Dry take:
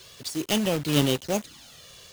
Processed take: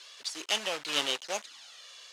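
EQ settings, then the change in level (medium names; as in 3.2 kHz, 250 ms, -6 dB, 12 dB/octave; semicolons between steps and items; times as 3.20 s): high-pass 890 Hz 12 dB/octave; low-pass 6.7 kHz 12 dB/octave; 0.0 dB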